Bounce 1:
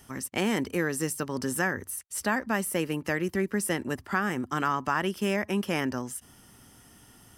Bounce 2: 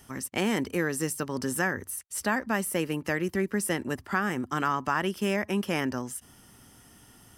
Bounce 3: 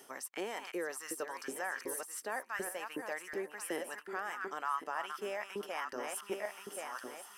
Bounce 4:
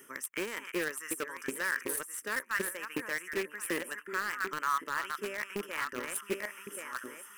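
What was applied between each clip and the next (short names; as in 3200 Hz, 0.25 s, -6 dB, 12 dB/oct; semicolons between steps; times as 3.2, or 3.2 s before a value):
nothing audible
regenerating reverse delay 0.538 s, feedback 41%, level -8.5 dB; reverse; compressor 6:1, threshold -37 dBFS, peak gain reduction 15.5 dB; reverse; LFO high-pass saw up 2.7 Hz 350–1500 Hz
rattling part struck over -49 dBFS, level -37 dBFS; fixed phaser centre 1800 Hz, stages 4; in parallel at -6.5 dB: requantised 6-bit, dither none; on the sum: gain +5 dB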